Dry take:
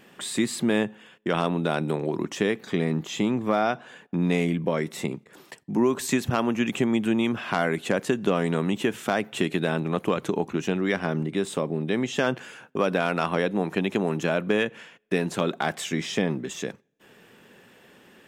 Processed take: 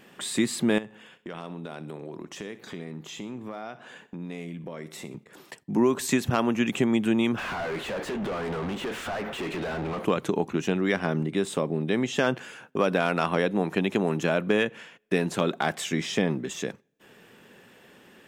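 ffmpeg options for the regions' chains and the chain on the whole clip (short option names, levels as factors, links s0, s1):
-filter_complex "[0:a]asettb=1/sr,asplit=3[s0][s1][s2];[s0]atrim=end=0.784[s3];[s1]atrim=start=0.78:end=5.15,asetpts=PTS-STARTPTS,afade=t=in:d=0.004:c=qsin,afade=t=out:st=4.366:d=0.004:c=qsin,acompressor=threshold=0.01:ratio=2.5:attack=3.2:release=140:knee=1:detection=peak,aecho=1:1:64|128|192:0.158|0.0618|0.0241,atrim=end_sample=192717[s4];[s2]atrim=start=5.146[s5];[s3][s4]acrossfade=d=0.004:c1=hsin:c2=qsin[s6];[s6][s5]acrossfade=d=0.004:c1=qsin:c2=hsin,asettb=1/sr,asplit=3[s7][s8][s9];[s7]atrim=end=7.384[s10];[s8]atrim=start=7.38:end=10.05,asetpts=PTS-STARTPTS,afade=t=in:d=0.004:c=qsin,afade=t=out:st=2.666:d=0.004:c=qsin,acompressor=threshold=0.02:ratio=3:attack=3.2:release=140:knee=1:detection=peak,flanger=delay=5.7:depth=4.8:regen=-89:speed=1.2:shape=sinusoidal,asplit=2[s11][s12];[s12]highpass=f=720:p=1,volume=63.1,asoftclip=type=tanh:threshold=0.075[s13];[s11][s13]amix=inputs=2:normalize=0,lowpass=f=1400:p=1,volume=0.501[s14];[s9]atrim=start=10.046[s15];[s10][s14]acrossfade=d=0.004:c1=hsin:c2=qsin[s16];[s16][s15]acrossfade=d=0.004:c1=qsin:c2=hsin"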